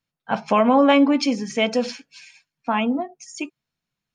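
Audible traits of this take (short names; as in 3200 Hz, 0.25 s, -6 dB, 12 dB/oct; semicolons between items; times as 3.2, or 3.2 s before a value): noise floor -86 dBFS; spectral tilt -3.0 dB/oct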